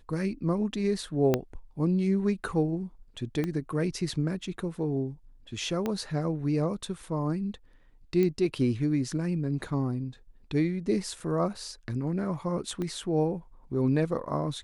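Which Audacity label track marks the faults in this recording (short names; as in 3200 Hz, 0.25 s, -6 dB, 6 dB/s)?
1.340000	1.340000	pop -11 dBFS
3.440000	3.440000	pop -18 dBFS
5.860000	5.860000	pop -17 dBFS
8.230000	8.230000	pop -17 dBFS
11.200000	11.200000	gap 2.5 ms
12.820000	12.820000	pop -22 dBFS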